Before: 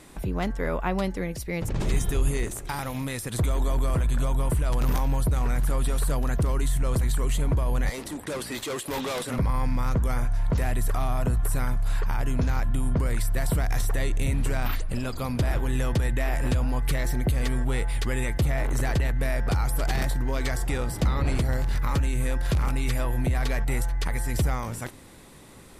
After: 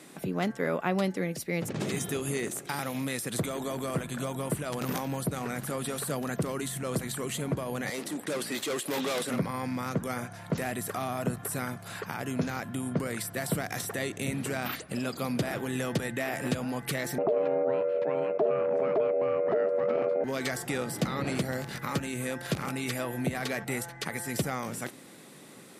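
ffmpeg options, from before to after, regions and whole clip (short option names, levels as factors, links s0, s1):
-filter_complex "[0:a]asettb=1/sr,asplit=3[s0][s1][s2];[s0]atrim=end=17.184[s3];[s1]atrim=start=17.18:end=20.24,asetpts=PTS-STARTPTS,afade=t=in:d=0.004:c=qsin,afade=t=out:st=3.056:d=0.004:c=qsin,lowpass=1200,aeval=exprs='val(0)*sin(2*PI*530*n/s)':c=same[s4];[s2]atrim=start=20.236[s5];[s3][s4]acrossfade=d=0.004:c1=hsin:c2=qsin[s6];[s6][s5]acrossfade=d=0.004:c1=qsin:c2=hsin,highpass=f=150:w=0.5412,highpass=f=150:w=1.3066,equalizer=f=960:t=o:w=0.37:g=-5.5"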